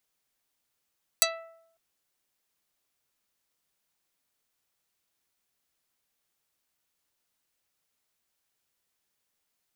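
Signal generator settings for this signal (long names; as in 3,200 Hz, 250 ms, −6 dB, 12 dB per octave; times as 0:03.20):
Karplus-Strong string E5, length 0.55 s, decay 0.75 s, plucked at 0.37, dark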